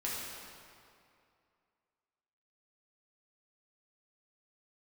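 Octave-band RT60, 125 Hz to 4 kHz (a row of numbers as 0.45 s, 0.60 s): 2.4 s, 2.4 s, 2.5 s, 2.5 s, 2.1 s, 1.8 s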